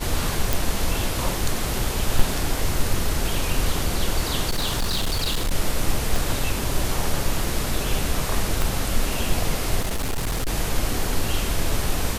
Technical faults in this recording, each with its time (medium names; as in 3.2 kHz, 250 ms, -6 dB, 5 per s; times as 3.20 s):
0.53 s: pop
2.19 s: dropout 4.4 ms
4.49–5.54 s: clipped -18.5 dBFS
6.16 s: pop
8.62 s: pop
9.80–10.50 s: clipped -20.5 dBFS